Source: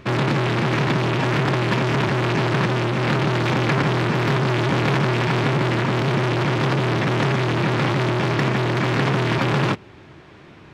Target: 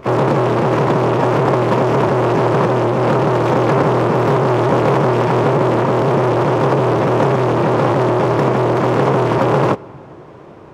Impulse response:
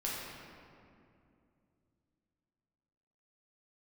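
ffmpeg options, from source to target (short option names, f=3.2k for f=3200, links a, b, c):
-filter_complex "[0:a]equalizer=f=500:t=o:w=1:g=10,equalizer=f=1k:t=o:w=1:g=6,equalizer=f=2k:t=o:w=1:g=-7,equalizer=f=4k:t=o:w=1:g=-7,asplit=2[a][b];[b]asetrate=88200,aresample=44100,atempo=0.5,volume=-17dB[c];[a][c]amix=inputs=2:normalize=0,asplit=2[d][e];[1:a]atrim=start_sample=2205[f];[e][f]afir=irnorm=-1:irlink=0,volume=-24.5dB[g];[d][g]amix=inputs=2:normalize=0,volume=1.5dB"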